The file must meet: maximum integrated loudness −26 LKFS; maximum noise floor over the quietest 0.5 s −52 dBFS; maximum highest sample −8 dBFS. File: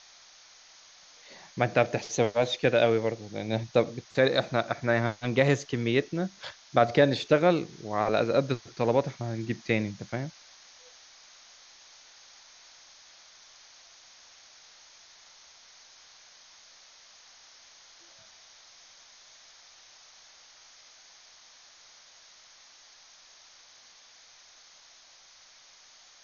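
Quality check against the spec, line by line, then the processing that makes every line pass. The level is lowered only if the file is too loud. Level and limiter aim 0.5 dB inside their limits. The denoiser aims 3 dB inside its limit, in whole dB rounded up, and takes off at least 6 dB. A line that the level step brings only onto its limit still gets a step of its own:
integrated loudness −27.0 LKFS: in spec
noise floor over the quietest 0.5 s −56 dBFS: in spec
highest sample −7.0 dBFS: out of spec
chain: brickwall limiter −8.5 dBFS

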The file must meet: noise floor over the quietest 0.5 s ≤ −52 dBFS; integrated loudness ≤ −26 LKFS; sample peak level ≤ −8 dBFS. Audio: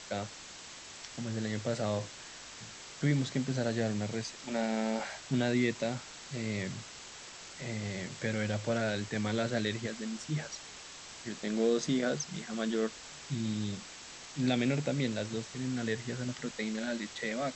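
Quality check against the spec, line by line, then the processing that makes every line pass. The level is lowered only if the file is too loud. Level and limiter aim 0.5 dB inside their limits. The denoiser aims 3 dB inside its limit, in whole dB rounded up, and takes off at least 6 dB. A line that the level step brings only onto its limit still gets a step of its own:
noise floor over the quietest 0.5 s −48 dBFS: out of spec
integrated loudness −34.5 LKFS: in spec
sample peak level −17.5 dBFS: in spec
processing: broadband denoise 7 dB, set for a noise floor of −48 dBFS

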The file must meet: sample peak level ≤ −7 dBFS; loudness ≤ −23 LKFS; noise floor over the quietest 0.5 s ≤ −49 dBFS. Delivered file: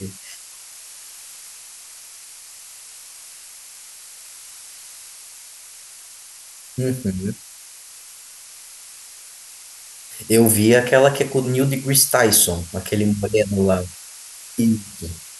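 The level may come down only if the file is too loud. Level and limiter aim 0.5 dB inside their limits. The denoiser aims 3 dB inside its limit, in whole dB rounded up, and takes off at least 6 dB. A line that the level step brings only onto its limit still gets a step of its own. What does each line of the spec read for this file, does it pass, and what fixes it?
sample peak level −2.0 dBFS: out of spec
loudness −17.5 LKFS: out of spec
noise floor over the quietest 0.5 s −42 dBFS: out of spec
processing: broadband denoise 6 dB, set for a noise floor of −42 dBFS
level −6 dB

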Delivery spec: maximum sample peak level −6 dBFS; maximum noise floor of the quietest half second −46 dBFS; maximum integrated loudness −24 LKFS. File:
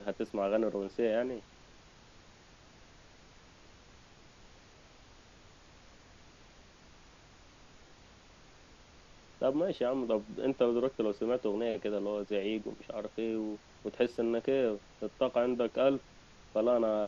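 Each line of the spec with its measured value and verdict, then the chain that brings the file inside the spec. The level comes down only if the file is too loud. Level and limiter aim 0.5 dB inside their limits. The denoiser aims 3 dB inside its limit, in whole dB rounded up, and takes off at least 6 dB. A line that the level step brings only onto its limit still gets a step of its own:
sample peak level −15.5 dBFS: in spec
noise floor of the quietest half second −58 dBFS: in spec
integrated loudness −33.0 LKFS: in spec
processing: no processing needed

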